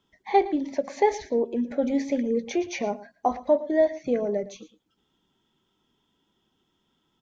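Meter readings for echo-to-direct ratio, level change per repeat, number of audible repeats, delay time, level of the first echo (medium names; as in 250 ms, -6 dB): -16.5 dB, no regular repeats, 1, 113 ms, -16.5 dB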